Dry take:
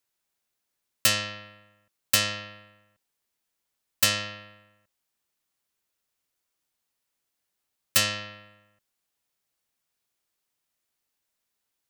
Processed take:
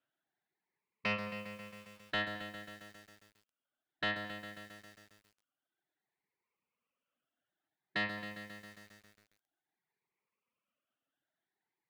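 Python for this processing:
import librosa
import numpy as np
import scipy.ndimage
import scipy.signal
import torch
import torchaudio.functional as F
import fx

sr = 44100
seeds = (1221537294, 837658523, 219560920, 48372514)

p1 = fx.spec_ripple(x, sr, per_octave=0.85, drift_hz=0.54, depth_db=10)
p2 = scipy.signal.sosfilt(scipy.signal.cheby1(2, 1.0, [160.0, 3000.0], 'bandpass', fs=sr, output='sos'), p1)
p3 = fx.dereverb_blind(p2, sr, rt60_s=1.4)
p4 = 10.0 ** (-27.5 / 20.0) * np.tanh(p3 / 10.0 ** (-27.5 / 20.0))
p5 = fx.air_absorb(p4, sr, metres=360.0)
p6 = p5 + fx.echo_single(p5, sr, ms=216, db=-18.0, dry=0)
p7 = fx.echo_crushed(p6, sr, ms=135, feedback_pct=80, bits=10, wet_db=-9.0)
y = p7 * 10.0 ** (2.5 / 20.0)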